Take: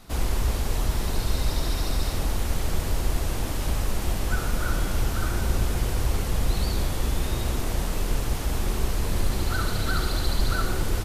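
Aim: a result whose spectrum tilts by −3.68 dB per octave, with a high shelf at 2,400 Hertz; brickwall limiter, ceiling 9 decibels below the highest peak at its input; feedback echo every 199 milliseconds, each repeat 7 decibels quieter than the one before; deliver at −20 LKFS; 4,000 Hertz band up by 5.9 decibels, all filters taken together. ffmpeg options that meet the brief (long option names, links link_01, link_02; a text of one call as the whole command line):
ffmpeg -i in.wav -af "highshelf=frequency=2400:gain=3.5,equalizer=frequency=4000:width_type=o:gain=4,alimiter=limit=-18.5dB:level=0:latency=1,aecho=1:1:199|398|597|796|995:0.447|0.201|0.0905|0.0407|0.0183,volume=9dB" out.wav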